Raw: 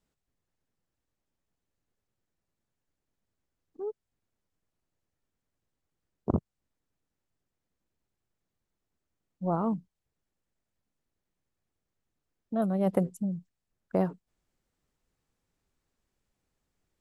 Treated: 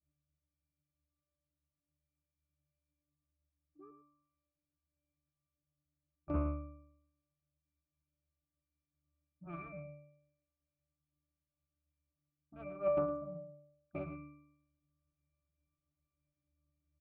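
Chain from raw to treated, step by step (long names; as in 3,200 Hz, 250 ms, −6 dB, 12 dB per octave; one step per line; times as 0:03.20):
in parallel at −3.5 dB: soft clipping −22.5 dBFS, distortion −13 dB
on the sum: harmonic generator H 7 −11 dB, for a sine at −10 dBFS
resonances in every octave D, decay 0.78 s
on a send: single-tap delay 109 ms −12 dB
on the sum: highs frequency-modulated by the lows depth 0.21 ms
level +7.5 dB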